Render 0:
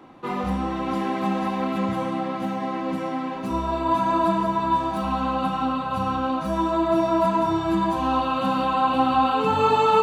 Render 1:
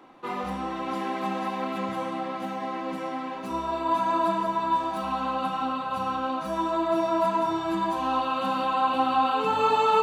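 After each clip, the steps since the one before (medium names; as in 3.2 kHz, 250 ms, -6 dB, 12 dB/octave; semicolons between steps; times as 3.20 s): peaking EQ 82 Hz -13 dB 2.7 oct; trim -2 dB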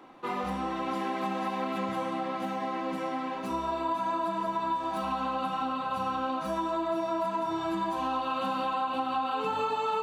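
compression, threshold -27 dBFS, peak gain reduction 10 dB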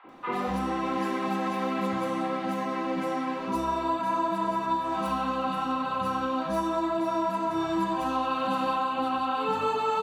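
three bands offset in time mids, lows, highs 40/90 ms, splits 810/3200 Hz; trim +4.5 dB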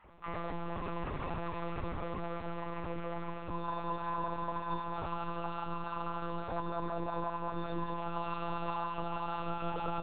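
monotone LPC vocoder at 8 kHz 170 Hz; trim -8.5 dB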